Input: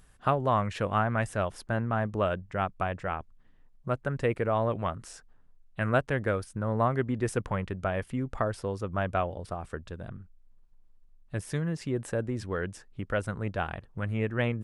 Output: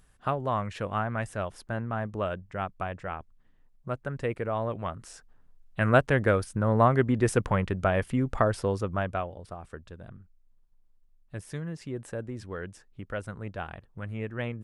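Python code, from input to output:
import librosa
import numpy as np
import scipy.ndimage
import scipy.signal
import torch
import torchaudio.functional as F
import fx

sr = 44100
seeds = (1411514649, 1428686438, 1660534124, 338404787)

y = fx.gain(x, sr, db=fx.line((4.79, -3.0), (5.99, 5.0), (8.75, 5.0), (9.3, -5.0)))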